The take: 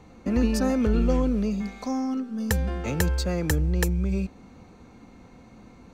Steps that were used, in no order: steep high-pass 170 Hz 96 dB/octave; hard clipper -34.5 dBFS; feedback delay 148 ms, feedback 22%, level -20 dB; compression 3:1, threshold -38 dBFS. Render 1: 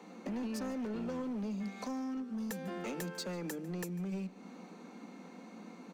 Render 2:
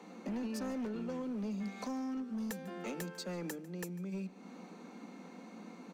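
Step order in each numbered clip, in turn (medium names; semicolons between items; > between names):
steep high-pass > compression > hard clipper > feedback delay; compression > steep high-pass > hard clipper > feedback delay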